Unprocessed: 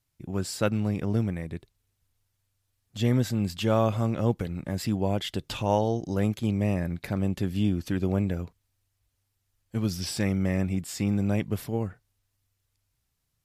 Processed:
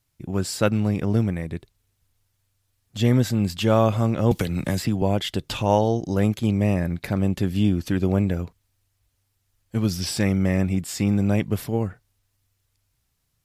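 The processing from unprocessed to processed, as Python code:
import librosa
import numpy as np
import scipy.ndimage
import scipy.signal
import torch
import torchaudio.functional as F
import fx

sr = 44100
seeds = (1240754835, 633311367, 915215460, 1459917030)

y = fx.band_squash(x, sr, depth_pct=100, at=(4.31, 5.02))
y = y * librosa.db_to_amplitude(5.0)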